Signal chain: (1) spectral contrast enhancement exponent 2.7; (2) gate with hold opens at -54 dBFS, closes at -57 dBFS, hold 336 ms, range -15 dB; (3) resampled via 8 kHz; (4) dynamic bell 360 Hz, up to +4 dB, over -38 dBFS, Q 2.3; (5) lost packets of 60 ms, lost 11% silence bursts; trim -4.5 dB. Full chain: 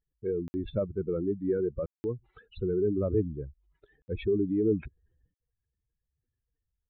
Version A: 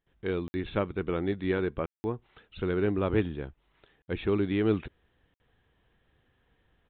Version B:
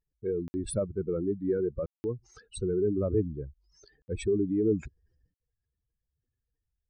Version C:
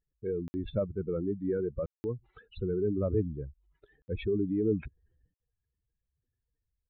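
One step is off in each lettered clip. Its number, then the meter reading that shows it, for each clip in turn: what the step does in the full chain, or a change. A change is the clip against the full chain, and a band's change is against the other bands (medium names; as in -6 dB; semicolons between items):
1, 1 kHz band +14.0 dB; 3, momentary loudness spread change +2 LU; 4, momentary loudness spread change +1 LU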